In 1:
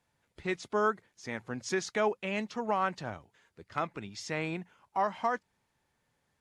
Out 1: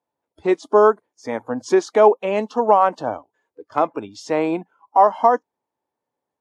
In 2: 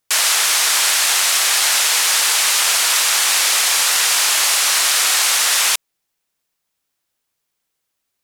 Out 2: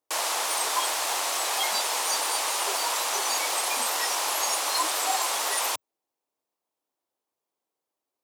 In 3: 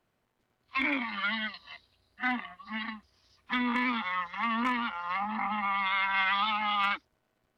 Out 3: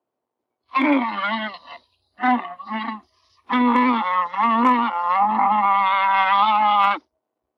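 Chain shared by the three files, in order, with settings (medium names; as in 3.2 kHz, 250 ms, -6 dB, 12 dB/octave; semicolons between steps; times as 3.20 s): high-pass 90 Hz 12 dB/octave; high-order bell 530 Hz +13 dB 2.4 oct; spectral noise reduction 18 dB; trim +4 dB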